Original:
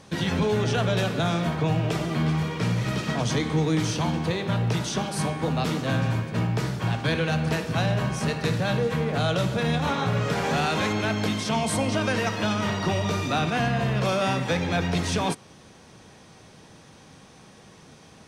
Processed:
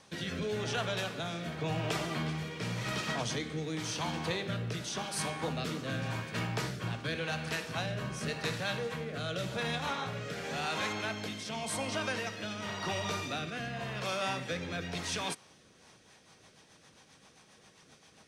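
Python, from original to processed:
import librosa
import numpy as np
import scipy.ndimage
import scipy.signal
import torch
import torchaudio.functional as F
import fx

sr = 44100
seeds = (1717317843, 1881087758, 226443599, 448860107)

y = fx.low_shelf(x, sr, hz=500.0, db=-10.5)
y = fx.rider(y, sr, range_db=10, speed_s=0.5)
y = fx.rotary_switch(y, sr, hz=0.9, then_hz=7.5, switch_at_s=15.52)
y = y * 10.0 ** (-3.0 / 20.0)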